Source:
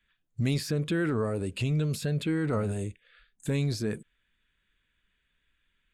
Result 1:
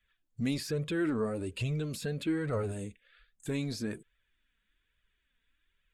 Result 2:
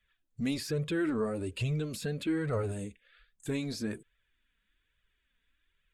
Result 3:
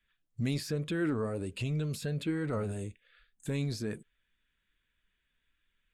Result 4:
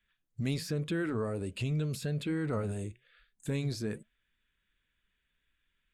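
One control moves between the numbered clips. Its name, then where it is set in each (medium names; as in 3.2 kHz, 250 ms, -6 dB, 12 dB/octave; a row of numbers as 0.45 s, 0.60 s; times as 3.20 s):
flange, regen: +22%, -3%, +79%, -90%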